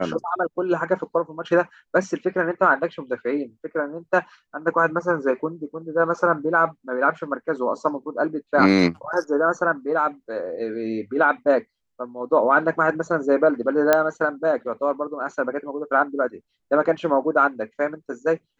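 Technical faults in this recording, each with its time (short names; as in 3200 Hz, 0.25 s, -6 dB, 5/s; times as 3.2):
13.93 pop -3 dBFS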